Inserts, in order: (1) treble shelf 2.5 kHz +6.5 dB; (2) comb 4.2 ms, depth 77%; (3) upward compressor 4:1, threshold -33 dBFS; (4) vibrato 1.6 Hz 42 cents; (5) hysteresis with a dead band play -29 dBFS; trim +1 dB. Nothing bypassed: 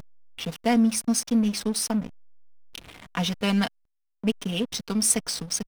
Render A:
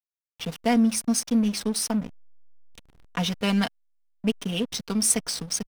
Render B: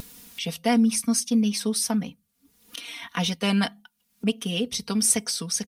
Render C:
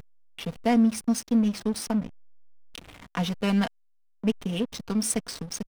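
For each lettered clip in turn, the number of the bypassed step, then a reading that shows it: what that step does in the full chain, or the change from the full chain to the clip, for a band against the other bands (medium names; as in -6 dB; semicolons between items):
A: 3, momentary loudness spread change -7 LU; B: 5, distortion -12 dB; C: 1, crest factor change -5.5 dB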